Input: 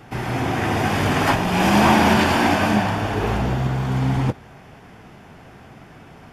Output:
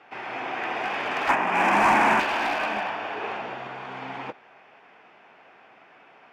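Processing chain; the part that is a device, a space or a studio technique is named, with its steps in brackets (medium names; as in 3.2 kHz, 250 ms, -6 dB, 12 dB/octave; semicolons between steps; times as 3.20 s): megaphone (band-pass 550–3000 Hz; peaking EQ 2.5 kHz +5.5 dB 0.31 oct; hard clipper -16 dBFS, distortion -14 dB); 1.29–2.20 s: graphic EQ 125/250/1000/2000/4000/8000 Hz +4/+9/+6/+6/-9/+7 dB; trim -4.5 dB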